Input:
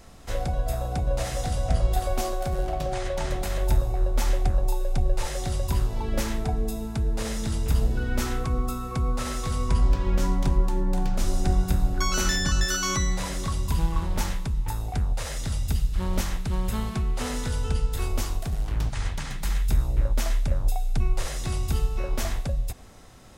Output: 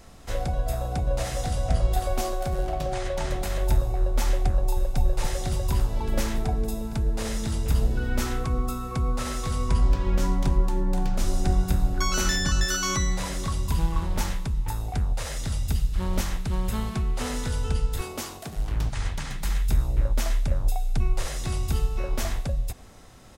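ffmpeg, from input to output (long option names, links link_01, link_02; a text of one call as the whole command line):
ffmpeg -i in.wav -filter_complex "[0:a]asplit=2[link_01][link_02];[link_02]afade=type=in:start_time=4.48:duration=0.01,afade=type=out:start_time=4.98:duration=0.01,aecho=0:1:280|560|840|1120|1400|1680|1960|2240|2520|2800|3080|3360:0.446684|0.379681|0.322729|0.27432|0.233172|0.198196|0.168467|0.143197|0.121717|0.103459|0.0879406|0.0747495[link_03];[link_01][link_03]amix=inputs=2:normalize=0,asettb=1/sr,asplit=3[link_04][link_05][link_06];[link_04]atrim=end=18.014[link_07];[link_05]atrim=start=18.01:end=18.56,asetpts=PTS-STARTPTS,afade=type=in:duration=0.004:curve=qsin,afade=type=out:start_time=0.546:duration=0.004:curve=qsin,highpass=180[link_08];[link_06]atrim=start=18.556[link_09];[link_07][link_08]acrossfade=duration=0.004:curve1=hsin:curve2=qsin[link_10];[link_10][link_09]acrossfade=duration=0.004:curve1=qsin:curve2=hsin" out.wav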